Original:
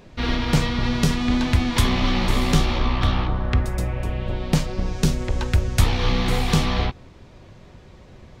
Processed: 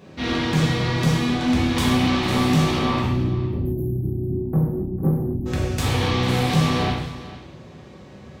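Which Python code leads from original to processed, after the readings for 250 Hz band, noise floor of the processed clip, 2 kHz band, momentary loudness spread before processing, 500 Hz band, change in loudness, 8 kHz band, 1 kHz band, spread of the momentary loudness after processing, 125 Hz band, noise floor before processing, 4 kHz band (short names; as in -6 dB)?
+3.0 dB, -43 dBFS, +0.5 dB, 6 LU, +3.0 dB, +1.0 dB, -2.0 dB, +1.5 dB, 6 LU, +1.0 dB, -46 dBFS, 0.0 dB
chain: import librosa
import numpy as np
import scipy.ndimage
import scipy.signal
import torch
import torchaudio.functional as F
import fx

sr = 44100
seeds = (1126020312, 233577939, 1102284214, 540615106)

y = fx.spec_erase(x, sr, start_s=3.01, length_s=2.45, low_hz=420.0, high_hz=11000.0)
y = scipy.signal.sosfilt(scipy.signal.butter(2, 160.0, 'highpass', fs=sr, output='sos'), y)
y = fx.low_shelf(y, sr, hz=270.0, db=10.0)
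y = fx.hum_notches(y, sr, base_hz=60, count=6)
y = 10.0 ** (-17.5 / 20.0) * np.tanh(y / 10.0 ** (-17.5 / 20.0))
y = y + 10.0 ** (-16.0 / 20.0) * np.pad(y, (int(449 * sr / 1000.0), 0))[:len(y)]
y = fx.rev_gated(y, sr, seeds[0], gate_ms=300, shape='falling', drr_db=-5.0)
y = y * librosa.db_to_amplitude(-3.0)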